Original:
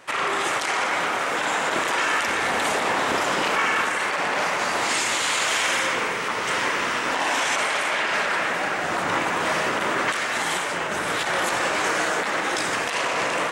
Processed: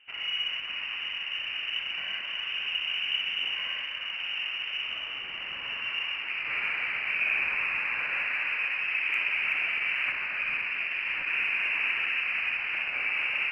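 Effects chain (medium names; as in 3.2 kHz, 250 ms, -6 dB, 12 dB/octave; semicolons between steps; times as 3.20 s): band-pass sweep 400 Hz -> 800 Hz, 5.62–6.53 s; frequency inversion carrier 3.3 kHz; thinning echo 62 ms, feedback 68%, level -8 dB; Chebyshev shaper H 8 -45 dB, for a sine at -17 dBFS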